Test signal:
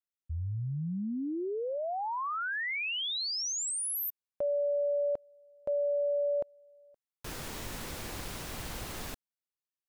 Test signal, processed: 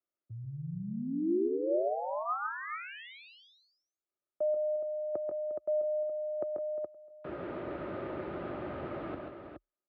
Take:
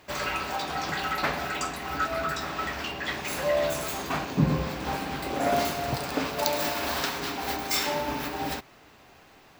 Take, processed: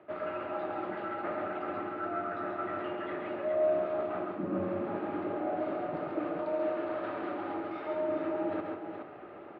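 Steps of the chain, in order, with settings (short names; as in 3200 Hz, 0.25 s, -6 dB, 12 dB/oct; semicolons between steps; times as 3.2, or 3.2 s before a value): HPF 79 Hz 6 dB/oct; notch 1100 Hz, Q 18; reverse; compressor 5:1, threshold -41 dBFS; reverse; small resonant body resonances 320/550/1200 Hz, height 13 dB, ringing for 30 ms; frequency shift +33 Hz; Gaussian blur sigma 3.8 samples; on a send: tapped delay 0.137/0.158/0.354/0.42 s -4.5/-12/-14.5/-7 dB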